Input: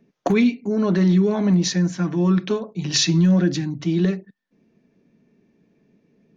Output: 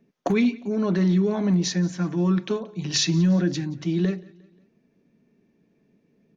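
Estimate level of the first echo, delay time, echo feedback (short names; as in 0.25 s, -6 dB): -23.0 dB, 0.178 s, 47%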